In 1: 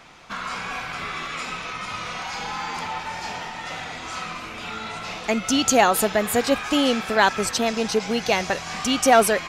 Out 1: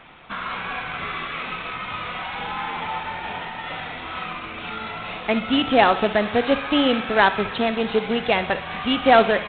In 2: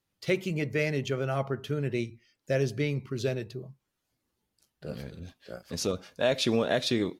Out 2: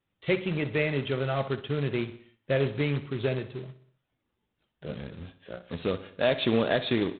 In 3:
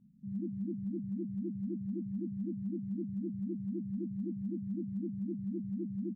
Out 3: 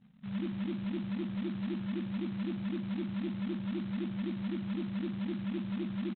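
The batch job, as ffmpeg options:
ffmpeg -i in.wav -af "aresample=8000,acrusher=bits=3:mode=log:mix=0:aa=0.000001,aresample=44100,aecho=1:1:62|124|186|248|310:0.178|0.096|0.0519|0.028|0.0151,volume=1dB" out.wav

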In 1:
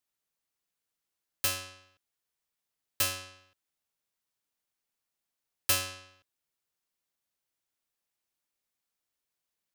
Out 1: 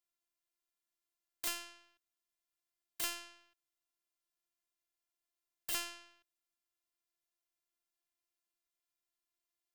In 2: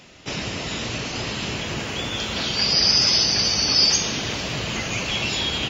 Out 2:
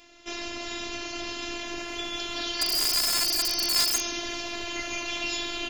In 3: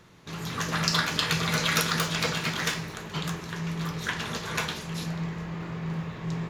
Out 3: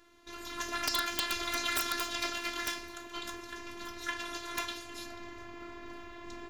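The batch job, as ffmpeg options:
ffmpeg -i in.wav -af "afftfilt=real='hypot(re,im)*cos(PI*b)':imag='0':win_size=512:overlap=0.75,aeval=exprs='(mod(3.55*val(0)+1,2)-1)/3.55':channel_layout=same,volume=-2.5dB" out.wav

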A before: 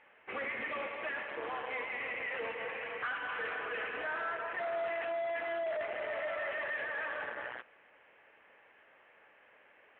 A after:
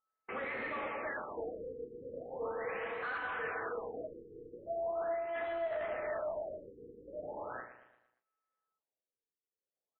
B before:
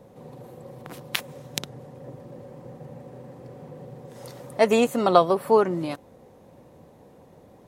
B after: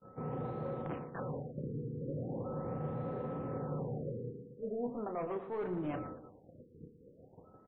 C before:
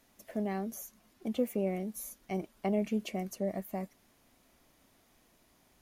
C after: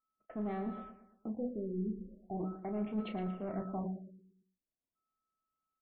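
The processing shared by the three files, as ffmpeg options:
ffmpeg -i in.wav -filter_complex "[0:a]aeval=exprs='val(0)+0.00251*sin(2*PI*1300*n/s)':channel_layout=same,bandreject=frequency=62.76:width_type=h:width=4,bandreject=frequency=125.52:width_type=h:width=4,bandreject=frequency=188.28:width_type=h:width=4,bandreject=frequency=251.04:width_type=h:width=4,bandreject=frequency=313.8:width_type=h:width=4,bandreject=frequency=376.56:width_type=h:width=4,bandreject=frequency=439.32:width_type=h:width=4,bandreject=frequency=502.08:width_type=h:width=4,bandreject=frequency=564.84:width_type=h:width=4,agate=range=-39dB:threshold=-47dB:ratio=16:detection=peak,highshelf=frequency=2300:gain=-7.5,bandreject=frequency=570:width=18,areverse,acompressor=threshold=-38dB:ratio=16,areverse,asoftclip=type=tanh:threshold=-38.5dB,aemphasis=mode=reproduction:type=75kf,asplit=2[link_01][link_02];[link_02]adelay=33,volume=-9dB[link_03];[link_01][link_03]amix=inputs=2:normalize=0,asplit=2[link_04][link_05];[link_05]aecho=0:1:115|230|345|460|575:0.266|0.12|0.0539|0.0242|0.0109[link_06];[link_04][link_06]amix=inputs=2:normalize=0,afftfilt=real='re*lt(b*sr/1024,480*pow(4400/480,0.5+0.5*sin(2*PI*0.4*pts/sr)))':imag='im*lt(b*sr/1024,480*pow(4400/480,0.5+0.5*sin(2*PI*0.4*pts/sr)))':win_size=1024:overlap=0.75,volume=6.5dB" out.wav

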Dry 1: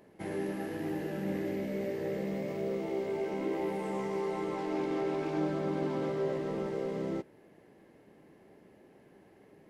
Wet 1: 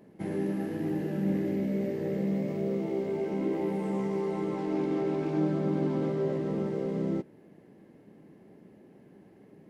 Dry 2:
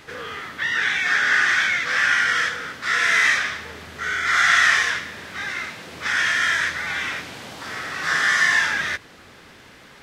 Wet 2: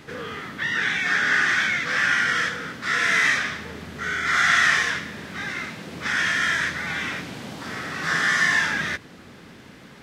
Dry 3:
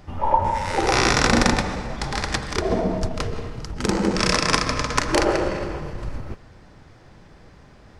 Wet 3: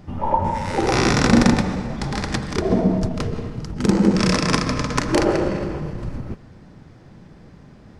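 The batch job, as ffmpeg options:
ffmpeg -i in.wav -af "equalizer=frequency=190:width_type=o:width=2:gain=10.5,volume=-2.5dB" out.wav

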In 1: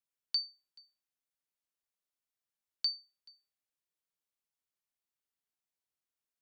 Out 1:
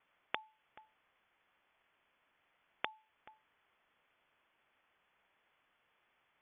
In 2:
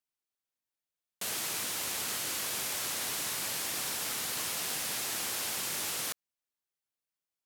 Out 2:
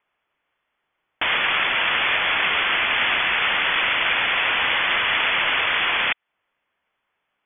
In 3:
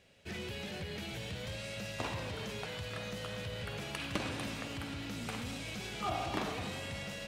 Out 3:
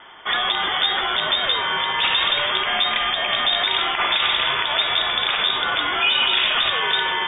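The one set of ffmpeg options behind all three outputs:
ffmpeg -i in.wav -filter_complex "[0:a]equalizer=frequency=530:width=0.53:gain=-7,acrossover=split=230|1300|2100[link_01][link_02][link_03][link_04];[link_01]acrusher=bits=4:dc=4:mix=0:aa=0.000001[link_05];[link_04]acompressor=threshold=-47dB:ratio=10[link_06];[link_05][link_02][link_03][link_06]amix=inputs=4:normalize=0,lowpass=frequency=3100:width_type=q:width=0.5098,lowpass=frequency=3100:width_type=q:width=0.6013,lowpass=frequency=3100:width_type=q:width=0.9,lowpass=frequency=3100:width_type=q:width=2.563,afreqshift=-3700,alimiter=level_in=35dB:limit=-1dB:release=50:level=0:latency=1,volume=-8.5dB" out.wav

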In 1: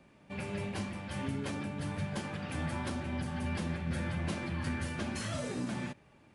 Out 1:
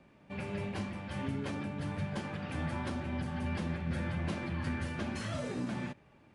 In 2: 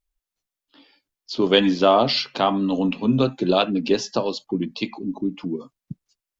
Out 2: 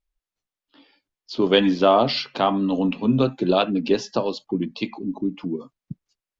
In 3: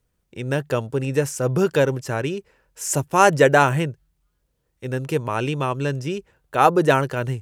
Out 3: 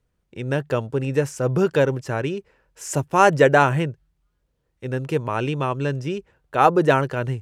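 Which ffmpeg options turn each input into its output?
ffmpeg -i in.wav -af "lowpass=frequency=3900:poles=1" out.wav

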